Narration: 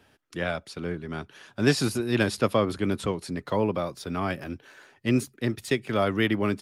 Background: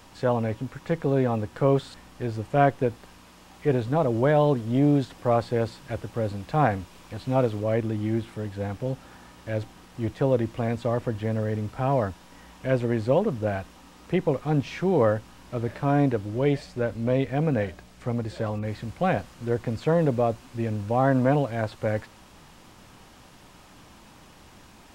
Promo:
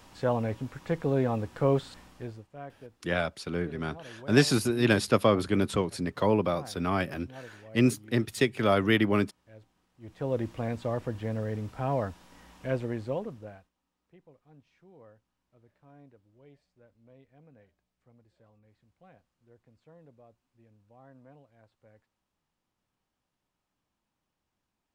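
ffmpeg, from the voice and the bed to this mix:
-filter_complex "[0:a]adelay=2700,volume=0.5dB[a];[1:a]volume=14.5dB,afade=t=out:st=2:d=0.47:silence=0.1,afade=t=in:st=10:d=0.42:silence=0.125893,afade=t=out:st=12.62:d=1.08:silence=0.0398107[b];[a][b]amix=inputs=2:normalize=0"

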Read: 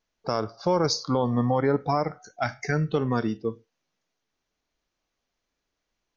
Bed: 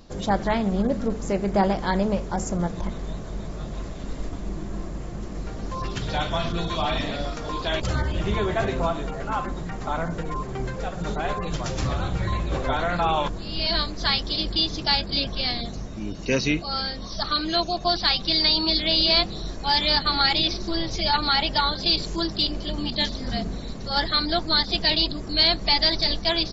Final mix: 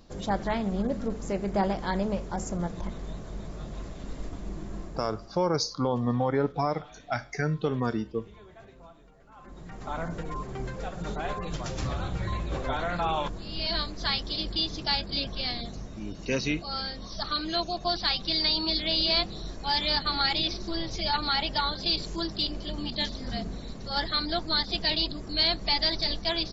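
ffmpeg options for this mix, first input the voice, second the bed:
-filter_complex "[0:a]adelay=4700,volume=-3dB[a];[1:a]volume=15.5dB,afade=t=out:st=4.74:d=0.69:silence=0.0891251,afade=t=in:st=9.36:d=0.68:silence=0.0891251[b];[a][b]amix=inputs=2:normalize=0"

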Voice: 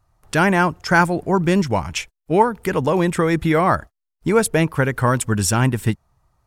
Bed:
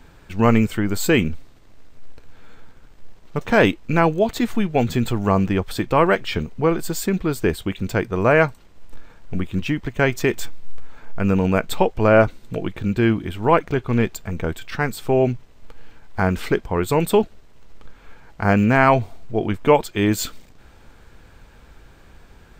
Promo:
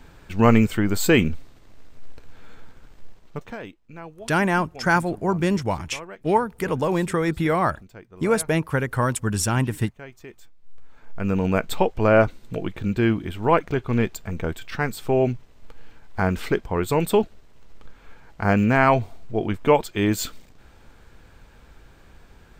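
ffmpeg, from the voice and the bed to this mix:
-filter_complex "[0:a]adelay=3950,volume=-4.5dB[a];[1:a]volume=20dB,afade=t=out:st=2.97:d=0.61:silence=0.0749894,afade=t=in:st=10.57:d=0.98:silence=0.1[b];[a][b]amix=inputs=2:normalize=0"

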